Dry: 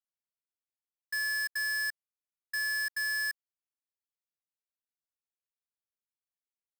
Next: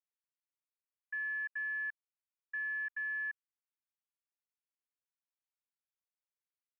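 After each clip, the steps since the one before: elliptic band-pass 900–2700 Hz, stop band 40 dB; trim -4.5 dB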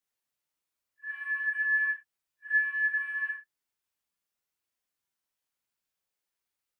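phase randomisation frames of 200 ms; trim +8.5 dB

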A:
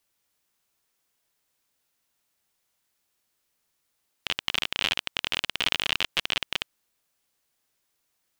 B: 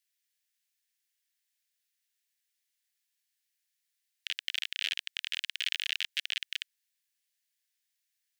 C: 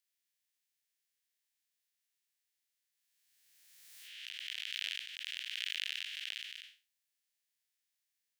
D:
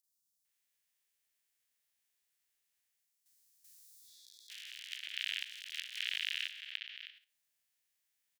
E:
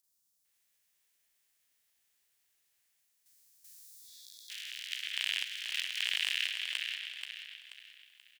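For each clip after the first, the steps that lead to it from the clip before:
elliptic high-pass 1.7 kHz, stop band 60 dB; trim -5.5 dB
spectral blur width 191 ms; swell ahead of each attack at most 29 dB/s; trim -2.5 dB
three bands offset in time highs, lows, mids 40/450 ms, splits 300/4400 Hz; spectral replace 3.73–4.48 s, 480–3300 Hz before; level held to a coarse grid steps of 11 dB; trim +5.5 dB
overload inside the chain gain 24 dB; feedback delay 482 ms, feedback 36%, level -6 dB; trim +5.5 dB

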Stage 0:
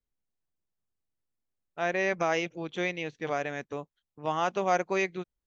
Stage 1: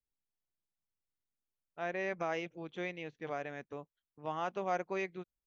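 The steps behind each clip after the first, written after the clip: treble shelf 5.4 kHz -12 dB; trim -8 dB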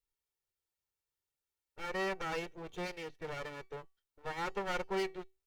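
comb filter that takes the minimum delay 2.2 ms; feedback comb 380 Hz, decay 0.28 s, harmonics all, mix 40%; trim +7 dB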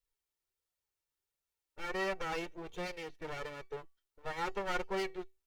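flange 1.4 Hz, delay 1.4 ms, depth 2.1 ms, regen +59%; trim +4.5 dB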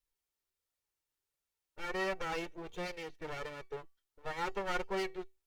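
wow and flutter 15 cents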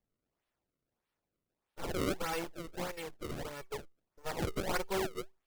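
decimation with a swept rate 30×, swing 160% 1.6 Hz; trim +1.5 dB

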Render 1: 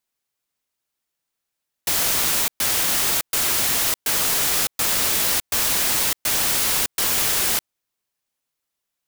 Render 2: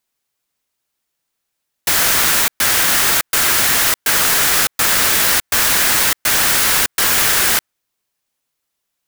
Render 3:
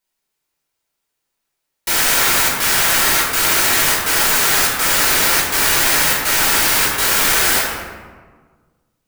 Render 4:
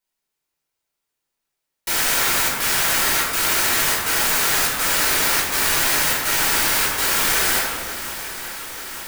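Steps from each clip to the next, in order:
dynamic bell 1.6 kHz, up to +7 dB, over -44 dBFS, Q 1.5; trim +5.5 dB
reverberation RT60 1.5 s, pre-delay 3 ms, DRR -6 dB; trim -6.5 dB
shuffle delay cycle 890 ms, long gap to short 1.5:1, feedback 71%, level -15 dB; trim -4.5 dB

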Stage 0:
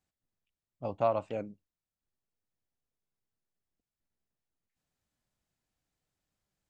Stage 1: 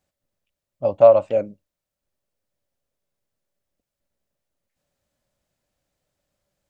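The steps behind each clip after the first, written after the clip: peaking EQ 570 Hz +13.5 dB 0.26 oct; trim +7 dB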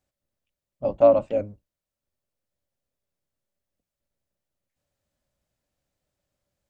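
octave divider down 1 oct, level -2 dB; trim -4.5 dB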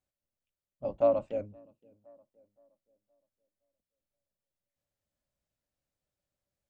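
tape echo 518 ms, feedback 38%, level -20.5 dB, low-pass 1.3 kHz; time-frequency box 1.46–1.96 s, 510–2400 Hz -9 dB; trim -9 dB

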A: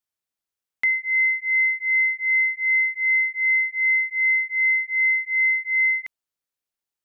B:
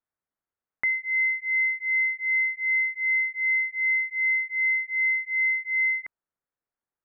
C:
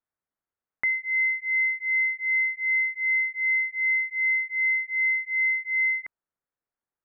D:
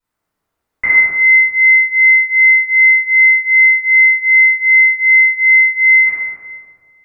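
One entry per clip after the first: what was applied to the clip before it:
low-pass 1.8 kHz 24 dB/octave; trim +2 dB
no audible change
reverberation RT60 1.9 s, pre-delay 3 ms, DRR -17 dB; trim -2 dB

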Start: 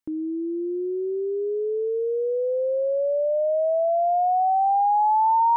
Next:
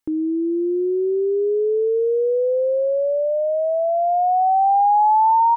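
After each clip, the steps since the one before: comb 2.4 ms, depth 31%; in parallel at 0 dB: peak limiter -24.5 dBFS, peak gain reduction 11 dB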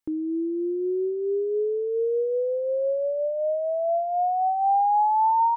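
random flutter of the level, depth 55%; trim -3 dB

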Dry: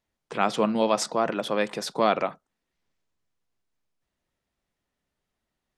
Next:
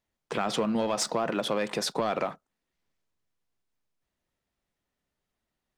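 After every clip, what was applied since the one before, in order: peak limiter -14 dBFS, peak gain reduction 6.5 dB; waveshaping leveller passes 1; compression, threshold -24 dBFS, peak gain reduction 6 dB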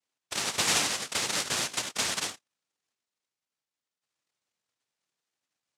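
bass shelf 480 Hz +10 dB; noise-vocoded speech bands 1; trim -6.5 dB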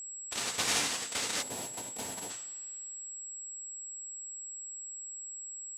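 two-slope reverb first 0.46 s, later 2.4 s, from -21 dB, DRR 4.5 dB; time-frequency box 1.42–2.31 s, 1–9.7 kHz -11 dB; whistle 7.7 kHz -35 dBFS; trim -5.5 dB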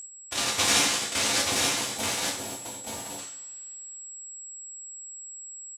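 delay 880 ms -4 dB; gated-style reverb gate 130 ms falling, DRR -0.5 dB; trim +4.5 dB

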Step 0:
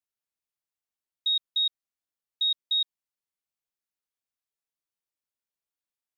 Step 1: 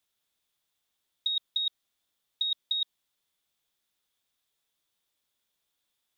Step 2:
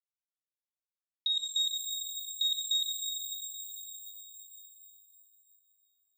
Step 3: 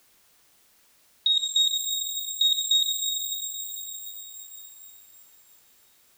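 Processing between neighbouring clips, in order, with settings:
peaking EQ 3.5 kHz +10.5 dB 0.29 oct; compressor with a negative ratio -25 dBFS, ratio -0.5
expander -50 dBFS; pitch-shifted reverb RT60 3.5 s, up +12 st, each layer -2 dB, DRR 1 dB; trim -2 dB
added noise white -69 dBFS; trim +8 dB

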